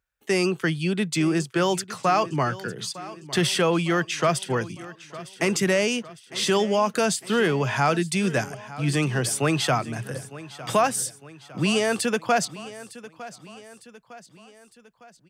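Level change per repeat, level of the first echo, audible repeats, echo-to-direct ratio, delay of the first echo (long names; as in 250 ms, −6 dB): −6.0 dB, −17.0 dB, 4, −15.5 dB, 906 ms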